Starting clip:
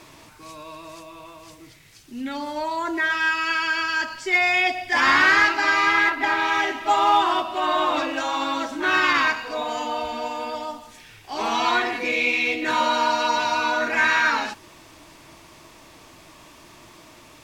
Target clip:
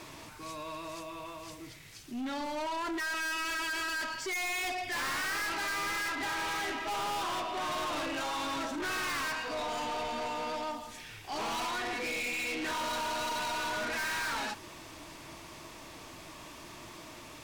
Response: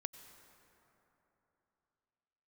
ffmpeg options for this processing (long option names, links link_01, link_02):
-filter_complex "[0:a]asettb=1/sr,asplit=3[link_01][link_02][link_03];[link_01]atrim=end=11.654[link_04];[link_02]atrim=start=11.65:end=12.62,asetpts=PTS-STARTPTS,afade=type=in:duration=0.004:curve=qsin,afade=type=out:start_time=0.966:duration=0.004:curve=qsin,acompressor=threshold=-22dB:ratio=6[link_05];[link_03]atrim=start=12.616[link_06];[link_04][link_05]acrossfade=duration=0.004:curve1=hsin:curve2=qsin[link_07];[link_07][link_06]acrossfade=duration=0.004:curve1=qsin:curve2=hsin,aeval=exprs='(tanh(44.7*val(0)+0.1)-tanh(0.1))/44.7':channel_layout=same"